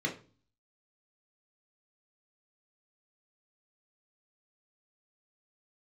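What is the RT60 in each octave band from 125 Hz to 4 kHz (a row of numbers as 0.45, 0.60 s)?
0.65, 0.55, 0.40, 0.35, 0.30, 0.35 s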